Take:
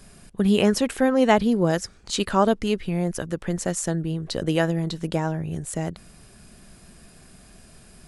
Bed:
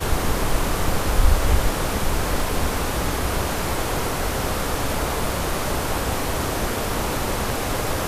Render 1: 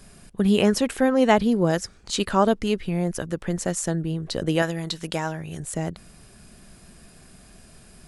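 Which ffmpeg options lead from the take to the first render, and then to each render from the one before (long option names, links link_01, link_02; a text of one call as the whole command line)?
ffmpeg -i in.wav -filter_complex "[0:a]asettb=1/sr,asplit=3[link_01][link_02][link_03];[link_01]atrim=end=4.624[link_04];[link_02]atrim=start=4.62:end=5.6,asetpts=PTS-STARTPTS,afade=type=in:duration=0.004:curve=qsin,afade=type=out:start_time=0.976:duration=0.004:curve=qsin,tiltshelf=frequency=850:gain=-6[link_05];[link_03]atrim=start=5.596[link_06];[link_04][link_05]acrossfade=duration=0.004:curve1=hsin:curve2=qsin[link_07];[link_07][link_06]acrossfade=duration=0.004:curve1=qsin:curve2=hsin" out.wav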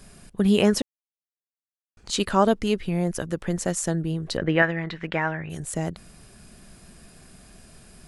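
ffmpeg -i in.wav -filter_complex "[0:a]asettb=1/sr,asplit=3[link_01][link_02][link_03];[link_01]atrim=end=4.374[link_04];[link_02]atrim=start=4.37:end=5.5,asetpts=PTS-STARTPTS,afade=type=in:duration=0.004:curve=qsin,afade=type=out:start_time=1.126:duration=0.004:curve=qsin,lowpass=frequency=2000:width_type=q:width=2.9[link_05];[link_03]atrim=start=5.496[link_06];[link_04][link_05]acrossfade=duration=0.004:curve1=hsin:curve2=qsin[link_07];[link_07][link_06]acrossfade=duration=0.004:curve1=qsin:curve2=hsin,asplit=3[link_08][link_09][link_10];[link_08]atrim=end=0.82,asetpts=PTS-STARTPTS,afade=type=out:start_time=0.816:duration=0.004:curve=hsin[link_11];[link_09]atrim=start=0.82:end=1.97,asetpts=PTS-STARTPTS,volume=0[link_12];[link_10]atrim=start=1.97,asetpts=PTS-STARTPTS,afade=type=in:duration=0.004:curve=hsin[link_13];[link_11][link_12][link_13]concat=n=3:v=0:a=1" out.wav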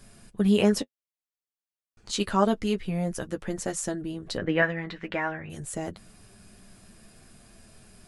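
ffmpeg -i in.wav -af "flanger=delay=8.6:depth=1.7:regen=-27:speed=0.54:shape=triangular" out.wav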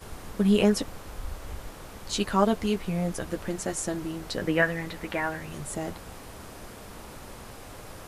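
ffmpeg -i in.wav -i bed.wav -filter_complex "[1:a]volume=-20dB[link_01];[0:a][link_01]amix=inputs=2:normalize=0" out.wav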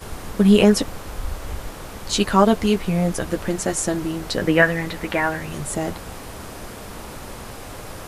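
ffmpeg -i in.wav -af "volume=8dB,alimiter=limit=-2dB:level=0:latency=1" out.wav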